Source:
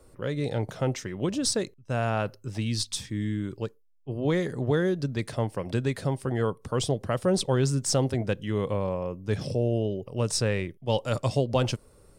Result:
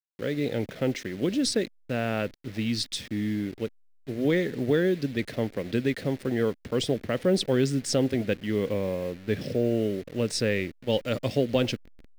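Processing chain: level-crossing sampler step -41 dBFS; ten-band EQ 125 Hz -3 dB, 250 Hz +8 dB, 500 Hz +5 dB, 1000 Hz -8 dB, 2000 Hz +9 dB, 4000 Hz +5 dB, 8000 Hz -3 dB; gain -3.5 dB

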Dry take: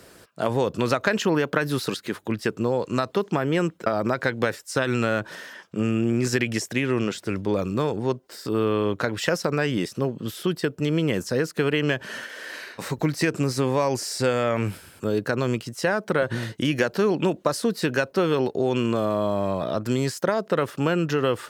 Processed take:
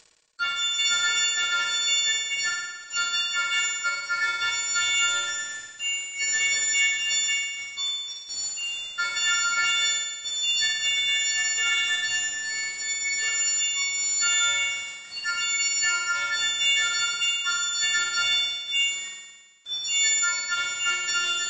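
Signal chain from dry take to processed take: frequency quantiser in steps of 4 st; spectral noise reduction 29 dB; de-esser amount 50%; steep high-pass 1300 Hz 96 dB/oct; limiter -20 dBFS, peak gain reduction 10.5 dB; soft clip -24 dBFS, distortion -18 dB; requantised 8-bit, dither none; flutter echo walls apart 9.5 m, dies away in 1.3 s; gain +5.5 dB; MP3 32 kbps 22050 Hz

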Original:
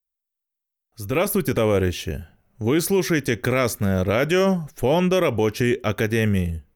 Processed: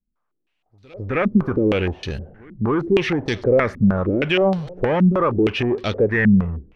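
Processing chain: power-law curve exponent 0.7; pre-echo 0.263 s -23.5 dB; stepped low-pass 6.4 Hz 220–4200 Hz; gain -4 dB

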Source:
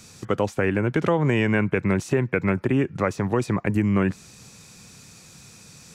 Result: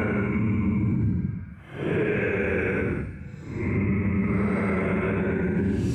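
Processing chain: Paulstretch 15×, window 0.05 s, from 1.6; vocal rider within 3 dB 0.5 s; limiter -16.5 dBFS, peak gain reduction 7 dB

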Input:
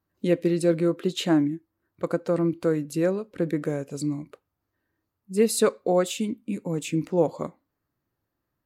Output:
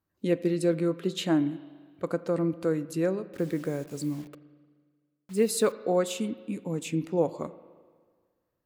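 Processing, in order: 3.26–5.72 requantised 8-bit, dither none; spring tank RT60 1.7 s, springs 37/42 ms, chirp 45 ms, DRR 15.5 dB; gain -3.5 dB

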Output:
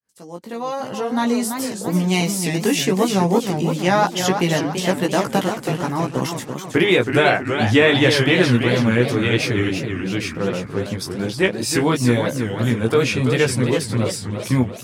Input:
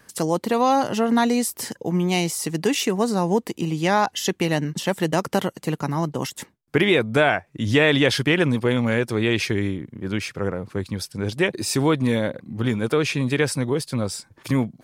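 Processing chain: opening faded in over 1.99 s; chorus 0.97 Hz, delay 15.5 ms, depth 2.2 ms; warbling echo 0.329 s, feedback 51%, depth 213 cents, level -7 dB; gain +5.5 dB

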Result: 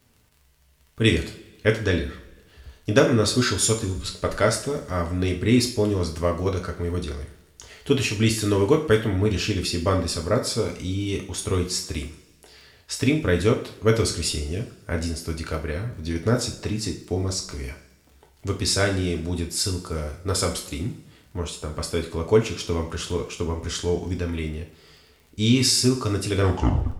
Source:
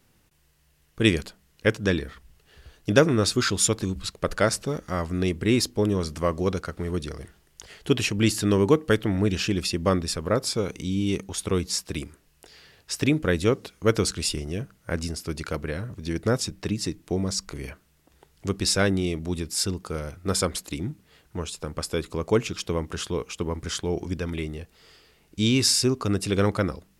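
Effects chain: tape stop at the end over 0.58 s; crackle 29/s -42 dBFS; two-slope reverb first 0.42 s, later 1.5 s, DRR 1.5 dB; gain -1 dB

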